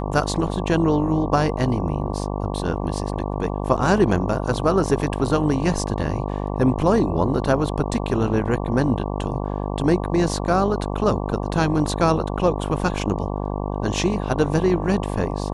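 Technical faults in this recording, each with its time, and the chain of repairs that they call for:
buzz 50 Hz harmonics 23 -26 dBFS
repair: de-hum 50 Hz, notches 23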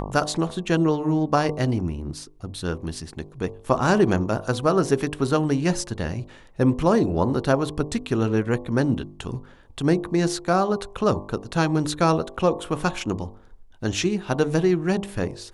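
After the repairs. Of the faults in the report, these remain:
none

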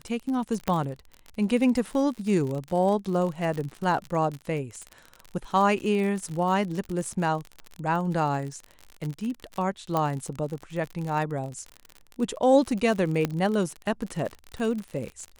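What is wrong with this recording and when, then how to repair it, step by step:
crackle 48/s -31 dBFS
0.68 pop -11 dBFS
6.29 gap 4.4 ms
9.97 pop -13 dBFS
13.25 pop -12 dBFS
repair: de-click; interpolate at 6.29, 4.4 ms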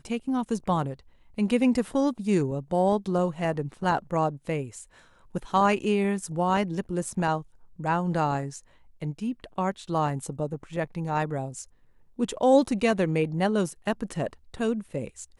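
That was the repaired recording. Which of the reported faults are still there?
0.68 pop
9.97 pop
13.25 pop

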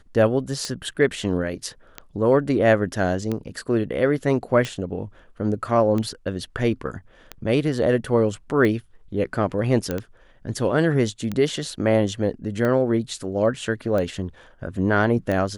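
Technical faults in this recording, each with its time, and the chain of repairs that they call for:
tick 45 rpm -14 dBFS
9.91 pop -12 dBFS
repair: de-click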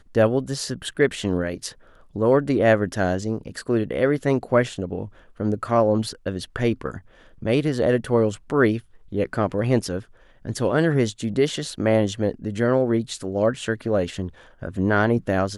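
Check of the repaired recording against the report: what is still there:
none

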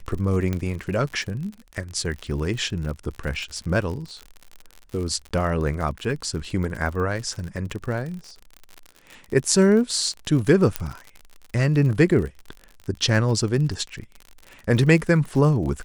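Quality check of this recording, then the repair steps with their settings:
crackle 57/s -30 dBFS
0.53 pop -13 dBFS
5.29–5.31 gap 17 ms
10.76 pop -6 dBFS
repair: de-click; interpolate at 5.29, 17 ms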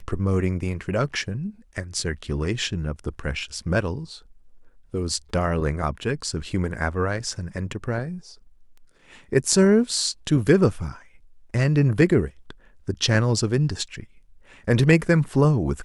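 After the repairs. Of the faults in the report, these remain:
none

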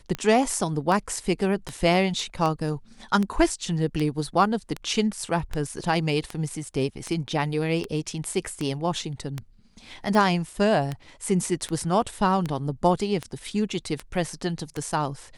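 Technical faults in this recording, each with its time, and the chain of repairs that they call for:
tick 78 rpm -15 dBFS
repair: de-click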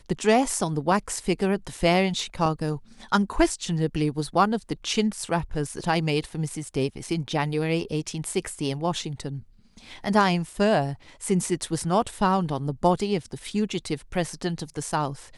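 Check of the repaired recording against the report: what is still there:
none

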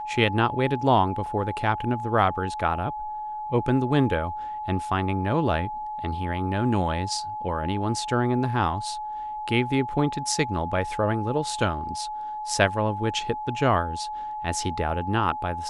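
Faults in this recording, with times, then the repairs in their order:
tone 850 Hz -30 dBFS
1.26 gap 3.6 ms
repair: notch 850 Hz, Q 30; interpolate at 1.26, 3.6 ms

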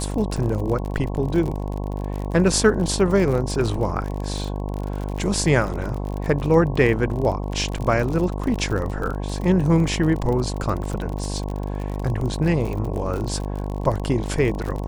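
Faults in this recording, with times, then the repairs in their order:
buzz 50 Hz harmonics 22 -27 dBFS
crackle 48/s -27 dBFS
7.78 gap 3.2 ms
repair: de-click; de-hum 50 Hz, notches 22; interpolate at 7.78, 3.2 ms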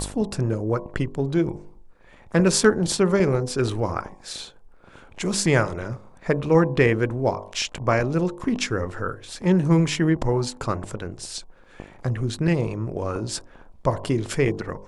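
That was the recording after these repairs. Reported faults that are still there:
none

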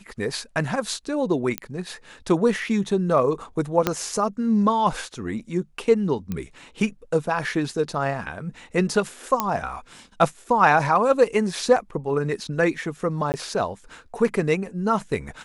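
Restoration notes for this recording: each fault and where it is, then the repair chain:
1.58 pop -9 dBFS
3.87 pop -5 dBFS
6.32 pop -16 dBFS
9.4 pop -6 dBFS
13.32–13.34 gap 19 ms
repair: de-click; interpolate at 13.32, 19 ms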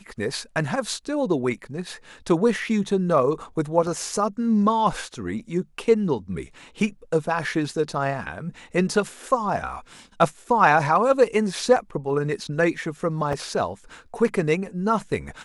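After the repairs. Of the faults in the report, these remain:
3.87 pop

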